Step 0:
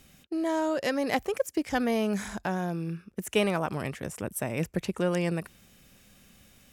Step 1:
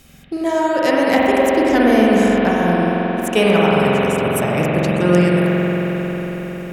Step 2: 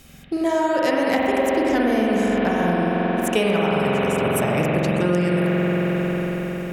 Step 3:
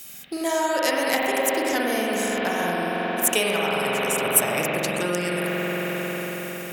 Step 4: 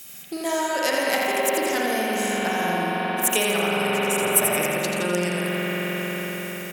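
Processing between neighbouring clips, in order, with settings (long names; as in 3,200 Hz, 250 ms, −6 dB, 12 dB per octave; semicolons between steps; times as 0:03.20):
convolution reverb RT60 5.4 s, pre-delay 45 ms, DRR −6 dB; level +8 dB
downward compressor, threshold −16 dBFS, peak gain reduction 8 dB
RIAA equalisation recording; level −1.5 dB
repeating echo 85 ms, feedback 56%, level −6 dB; level −1 dB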